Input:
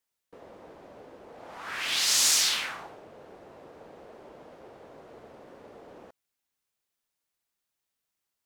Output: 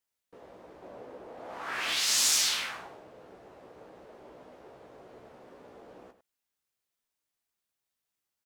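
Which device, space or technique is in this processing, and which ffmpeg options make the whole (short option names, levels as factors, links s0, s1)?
slapback doubling: -filter_complex "[0:a]asettb=1/sr,asplit=3[s0][s1][s2];[s0]atrim=end=0.824[s3];[s1]atrim=start=0.82:end=1.93,asetpts=PTS-STARTPTS,afade=t=in:d=0.004:c=qsin,afade=t=out:st=1.106:d=0.004:c=qsin,equalizer=f=550:w=0.36:g=5.5[s4];[s2]atrim=start=1.926[s5];[s3][s4]acrossfade=d=0.004:c1=hsin:c2=qsin[s6];[s6][s5]acrossfade=d=0.004:c1=qsin:c2=hsin,asplit=3[s7][s8][s9];[s8]adelay=16,volume=0.501[s10];[s9]adelay=102,volume=0.266[s11];[s7][s10][s11]amix=inputs=3:normalize=0,volume=0.668"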